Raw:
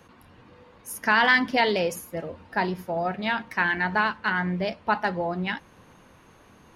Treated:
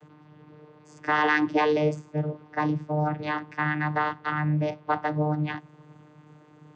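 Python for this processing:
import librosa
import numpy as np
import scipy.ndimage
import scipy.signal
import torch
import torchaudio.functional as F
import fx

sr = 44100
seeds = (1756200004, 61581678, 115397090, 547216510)

y = fx.vocoder(x, sr, bands=16, carrier='saw', carrier_hz=151.0)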